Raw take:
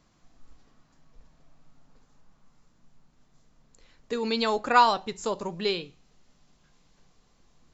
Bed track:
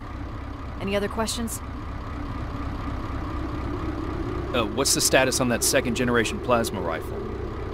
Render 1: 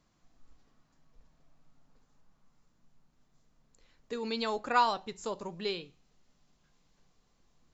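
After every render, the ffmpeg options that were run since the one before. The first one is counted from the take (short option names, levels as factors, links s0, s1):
-af "volume=0.447"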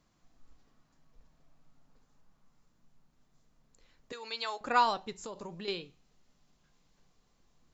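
-filter_complex "[0:a]asettb=1/sr,asplit=3[s0][s1][s2];[s0]atrim=end=4.124[s3];[s1]atrim=start=4.12:end=4.61,asetpts=PTS-STARTPTS,afade=t=in:d=0.004:c=qsin,afade=t=out:st=0.486:d=0.004:c=qsin,highpass=800[s4];[s2]atrim=start=4.606[s5];[s3][s4]acrossfade=d=0.004:c1=hsin:c2=qsin[s6];[s6][s5]acrossfade=d=0.004:c1=qsin:c2=hsin,asettb=1/sr,asplit=3[s7][s8][s9];[s7]atrim=end=5.134[s10];[s8]atrim=start=5.13:end=5.68,asetpts=PTS-STARTPTS,afade=t=in:d=0.004:c=qsin,afade=t=out:st=0.546:d=0.004:c=qsin,acompressor=threshold=0.0126:ratio=6:attack=3.2:release=140:knee=1:detection=peak[s11];[s9]atrim=start=5.676[s12];[s10][s11]acrossfade=d=0.004:c1=hsin:c2=qsin[s13];[s13][s12]acrossfade=d=0.004:c1=qsin:c2=hsin"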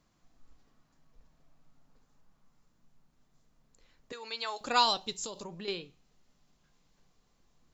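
-filter_complex "[0:a]asettb=1/sr,asplit=3[s0][s1][s2];[s0]atrim=end=4.564[s3];[s1]atrim=start=4.56:end=5.44,asetpts=PTS-STARTPTS,afade=t=in:d=0.004:c=qsin,afade=t=out:st=0.876:d=0.004:c=qsin,highshelf=f=2600:t=q:w=1.5:g=9[s4];[s2]atrim=start=5.436[s5];[s3][s4]acrossfade=d=0.004:c1=hsin:c2=qsin[s6];[s6][s5]acrossfade=d=0.004:c1=qsin:c2=hsin"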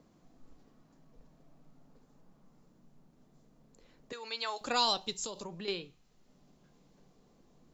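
-filter_complex "[0:a]acrossover=split=140|680|3300[s0][s1][s2][s3];[s1]acompressor=mode=upward:threshold=0.002:ratio=2.5[s4];[s2]alimiter=level_in=1.33:limit=0.0631:level=0:latency=1,volume=0.75[s5];[s0][s4][s5][s3]amix=inputs=4:normalize=0"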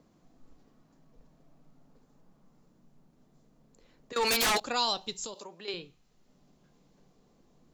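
-filter_complex "[0:a]asettb=1/sr,asplit=3[s0][s1][s2];[s0]atrim=end=4.164[s3];[s1]atrim=start=4.16:end=4.6,asetpts=PTS-STARTPTS,afade=t=in:d=0.004:c=qsin,afade=t=out:st=0.436:d=0.004:c=qsin,aeval=exprs='0.075*sin(PI/2*7.08*val(0)/0.075)':c=same[s4];[s2]atrim=start=4.596[s5];[s3][s4]acrossfade=d=0.004:c1=hsin:c2=qsin[s6];[s6][s5]acrossfade=d=0.004:c1=qsin:c2=hsin,asettb=1/sr,asplit=3[s7][s8][s9];[s7]atrim=end=5.344[s10];[s8]atrim=start=5.34:end=5.74,asetpts=PTS-STARTPTS,afade=t=in:d=0.004:c=qsin,afade=t=out:st=0.396:d=0.004:c=qsin,highpass=360[s11];[s9]atrim=start=5.736[s12];[s10][s11]acrossfade=d=0.004:c1=hsin:c2=qsin[s13];[s13][s12]acrossfade=d=0.004:c1=qsin:c2=hsin"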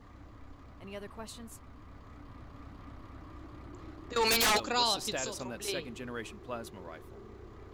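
-filter_complex "[1:a]volume=0.119[s0];[0:a][s0]amix=inputs=2:normalize=0"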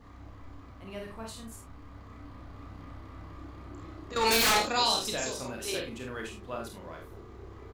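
-filter_complex "[0:a]asplit=2[s0][s1];[s1]adelay=31,volume=0.501[s2];[s0][s2]amix=inputs=2:normalize=0,aecho=1:1:49|69:0.562|0.266"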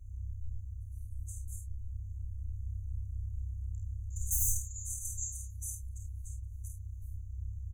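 -af "afftfilt=real='re*(1-between(b*sr/4096,100,6000))':imag='im*(1-between(b*sr/4096,100,6000))':win_size=4096:overlap=0.75,lowshelf=f=390:g=10"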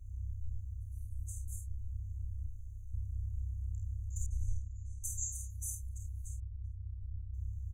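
-filter_complex "[0:a]asplit=3[s0][s1][s2];[s0]afade=t=out:st=2.47:d=0.02[s3];[s1]equalizer=f=80:w=1.5:g=-13,afade=t=in:st=2.47:d=0.02,afade=t=out:st=2.92:d=0.02[s4];[s2]afade=t=in:st=2.92:d=0.02[s5];[s3][s4][s5]amix=inputs=3:normalize=0,asettb=1/sr,asplit=3[s6][s7][s8];[s6]atrim=end=4.264[s9];[s7]atrim=start=4.26:end=5.04,asetpts=PTS-STARTPTS,afade=t=in:d=0.004:c=qsin,afade=t=out:st=0.776:d=0.004:c=qsin,lowpass=1600[s10];[s8]atrim=start=5.036[s11];[s9][s10]acrossfade=d=0.004:c1=hsin:c2=qsin[s12];[s12][s11]acrossfade=d=0.004:c1=qsin:c2=hsin,asettb=1/sr,asplit=3[s13][s14][s15];[s13]atrim=end=6.404[s16];[s14]atrim=start=6.4:end=7.34,asetpts=PTS-STARTPTS,afade=t=in:d=0.004:c=qsin,afade=t=out:st=0.936:d=0.004:c=qsin,lowpass=1300[s17];[s15]atrim=start=7.336[s18];[s16][s17]acrossfade=d=0.004:c1=hsin:c2=qsin[s19];[s19][s18]acrossfade=d=0.004:c1=qsin:c2=hsin"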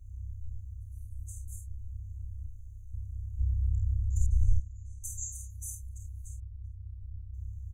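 -filter_complex "[0:a]asettb=1/sr,asplit=3[s0][s1][s2];[s0]atrim=end=3.394[s3];[s1]atrim=start=3.39:end=4.6,asetpts=PTS-STARTPTS,afade=t=in:d=0.004:c=qsin,afade=t=out:st=1.206:d=0.004:c=qsin,lowshelf=f=200:g=11.5[s4];[s2]atrim=start=4.596[s5];[s3][s4]acrossfade=d=0.004:c1=hsin:c2=qsin[s6];[s6][s5]acrossfade=d=0.004:c1=qsin:c2=hsin"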